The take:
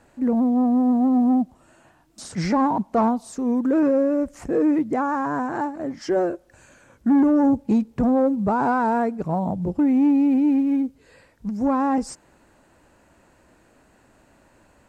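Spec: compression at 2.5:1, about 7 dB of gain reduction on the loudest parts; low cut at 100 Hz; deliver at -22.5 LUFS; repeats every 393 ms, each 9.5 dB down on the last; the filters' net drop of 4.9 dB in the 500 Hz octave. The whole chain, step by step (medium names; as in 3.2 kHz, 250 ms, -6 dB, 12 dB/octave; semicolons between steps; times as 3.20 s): high-pass 100 Hz; peaking EQ 500 Hz -6 dB; compression 2.5:1, threshold -28 dBFS; feedback delay 393 ms, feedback 33%, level -9.5 dB; trim +6.5 dB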